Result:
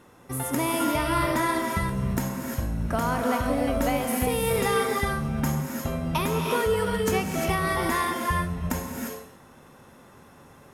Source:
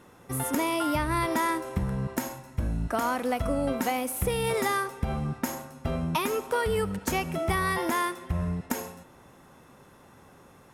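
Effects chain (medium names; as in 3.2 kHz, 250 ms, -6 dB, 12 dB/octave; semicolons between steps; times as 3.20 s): gated-style reverb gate 380 ms rising, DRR 0.5 dB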